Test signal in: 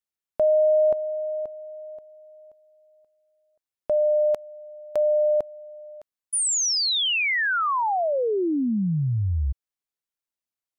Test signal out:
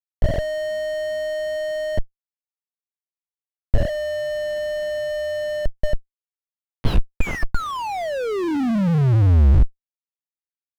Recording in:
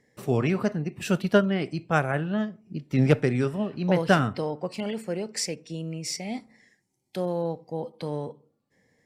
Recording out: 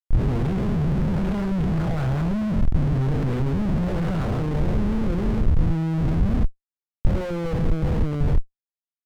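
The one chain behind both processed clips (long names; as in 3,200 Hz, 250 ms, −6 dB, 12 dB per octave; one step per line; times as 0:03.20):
spectrum smeared in time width 279 ms
mains-hum notches 60/120/180/240/300/360 Hz
auto-filter low-pass sine 2.5 Hz 830–3,700 Hz
comparator with hysteresis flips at −36.5 dBFS
RIAA equalisation playback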